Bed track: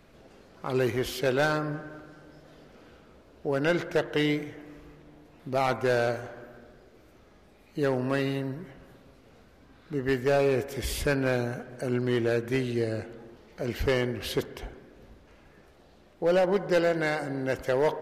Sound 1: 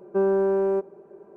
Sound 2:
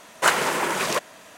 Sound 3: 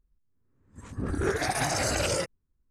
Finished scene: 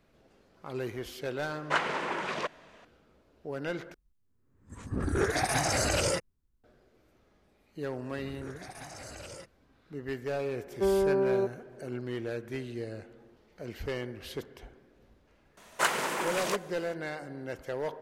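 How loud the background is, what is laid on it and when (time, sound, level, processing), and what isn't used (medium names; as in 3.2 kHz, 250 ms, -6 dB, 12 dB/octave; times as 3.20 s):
bed track -9.5 dB
1.48 s: add 2 -8.5 dB + low-pass 3.6 kHz
3.94 s: replace with 3 -0.5 dB
7.20 s: add 3 -17.5 dB
10.66 s: add 1 -4.5 dB
15.57 s: add 2 -8 dB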